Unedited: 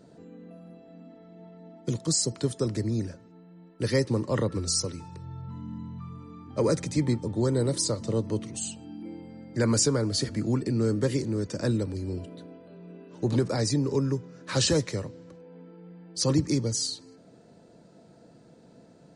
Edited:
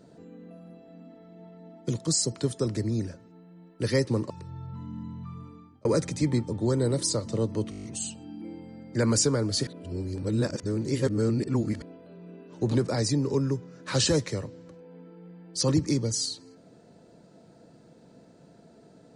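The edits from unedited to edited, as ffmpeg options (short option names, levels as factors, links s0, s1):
-filter_complex "[0:a]asplit=12[s0][s1][s2][s3][s4][s5][s6][s7][s8][s9][s10][s11];[s0]atrim=end=4.302[s12];[s1]atrim=start=5.048:end=6.6,asetpts=PTS-STARTPTS,afade=t=out:st=1.132:d=0.42[s13];[s2]atrim=start=6.6:end=8.472,asetpts=PTS-STARTPTS,afade=t=in:d=0.004:c=hsin[s14];[s3]atrim=start=8.448:end=8.472[s15];[s4]atrim=start=8.448:end=8.472[s16];[s5]atrim=start=8.448:end=8.472[s17];[s6]atrim=start=8.448:end=8.472[s18];[s7]atrim=start=8.448:end=8.472[s19];[s8]atrim=start=8.448:end=8.472[s20];[s9]atrim=start=8.448:end=10.282[s21];[s10]atrim=start=10.278:end=12.432,asetpts=PTS-STARTPTS,areverse[s22];[s11]atrim=start=12.428[s23];[s13][s14]concat=n=2:v=0:a=1[s24];[s12][s24]acrossfade=d=0.004:c1=hsin:c2=hsin[s25];[s25][s15]acrossfade=d=0.004:c1=hsin:c2=hsin[s26];[s26][s16]acrossfade=d=0.004:c1=hsin:c2=hsin[s27];[s27][s17]acrossfade=d=0.004:c1=hsin:c2=hsin[s28];[s28][s18]acrossfade=d=0.004:c1=hsin:c2=hsin[s29];[s29][s19]acrossfade=d=0.004:c1=hsin:c2=hsin[s30];[s30][s20]acrossfade=d=0.004:c1=hsin:c2=hsin[s31];[s31][s21]acrossfade=d=0.004:c1=hsin:c2=hsin[s32];[s32][s22]acrossfade=d=0.004:c1=hsin:c2=hsin[s33];[s33][s23]acrossfade=d=0.004:c1=hsin:c2=hsin"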